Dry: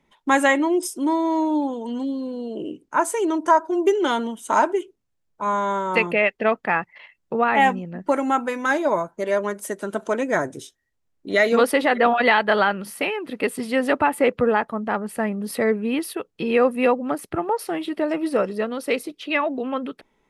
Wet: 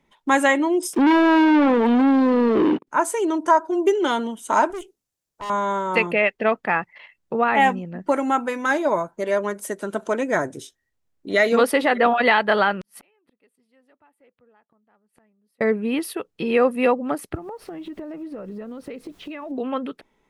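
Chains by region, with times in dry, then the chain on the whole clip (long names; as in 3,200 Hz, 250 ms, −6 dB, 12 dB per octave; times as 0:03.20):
0:00.93–0:02.87: high-pass filter 43 Hz 24 dB per octave + leveller curve on the samples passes 5 + three-way crossover with the lows and the highs turned down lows −13 dB, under 150 Hz, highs −22 dB, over 3,500 Hz
0:04.70–0:05.50: bass and treble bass −5 dB, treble +10 dB + tube saturation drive 28 dB, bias 0.55
0:12.81–0:15.61: gate with flip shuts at −25 dBFS, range −39 dB + saturating transformer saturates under 3,600 Hz
0:17.34–0:19.50: RIAA equalisation playback + background noise pink −57 dBFS + downward compressor 10 to 1, threshold −31 dBFS
whole clip: no processing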